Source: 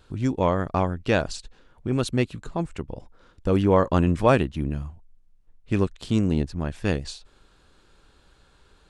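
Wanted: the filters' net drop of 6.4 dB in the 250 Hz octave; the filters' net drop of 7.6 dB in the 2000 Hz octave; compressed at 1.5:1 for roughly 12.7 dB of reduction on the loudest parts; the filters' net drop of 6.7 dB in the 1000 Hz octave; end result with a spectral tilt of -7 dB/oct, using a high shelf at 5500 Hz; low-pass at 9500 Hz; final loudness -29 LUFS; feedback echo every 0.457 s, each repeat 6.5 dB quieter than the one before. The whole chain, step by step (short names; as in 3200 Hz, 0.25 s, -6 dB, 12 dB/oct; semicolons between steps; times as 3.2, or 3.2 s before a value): LPF 9500 Hz; bell 250 Hz -8.5 dB; bell 1000 Hz -6 dB; bell 2000 Hz -7 dB; high shelf 5500 Hz -8 dB; compressor 1.5:1, threshold -54 dBFS; feedback echo 0.457 s, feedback 47%, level -6.5 dB; gain +11 dB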